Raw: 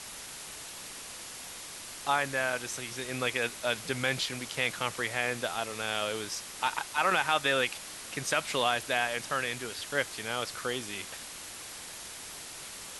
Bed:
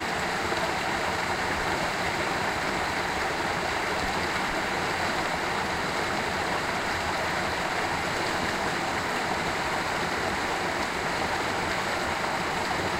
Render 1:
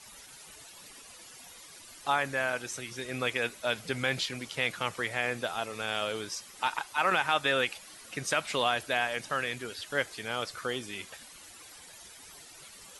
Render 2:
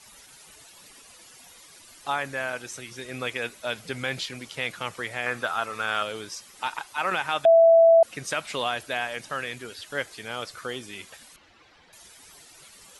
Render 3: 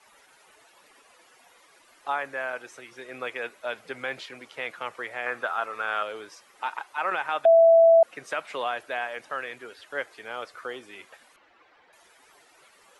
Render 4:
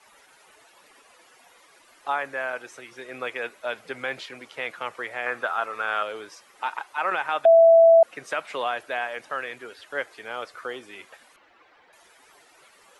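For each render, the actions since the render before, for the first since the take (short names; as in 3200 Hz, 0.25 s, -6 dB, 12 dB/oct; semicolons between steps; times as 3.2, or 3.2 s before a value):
denoiser 12 dB, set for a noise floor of -44 dBFS
5.26–6.03 bell 1300 Hz +11 dB 1 oct; 7.45–8.03 bleep 662 Hz -11.5 dBFS; 11.36–11.93 air absorption 230 m
three-band isolator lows -17 dB, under 320 Hz, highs -13 dB, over 2400 Hz
gain +2 dB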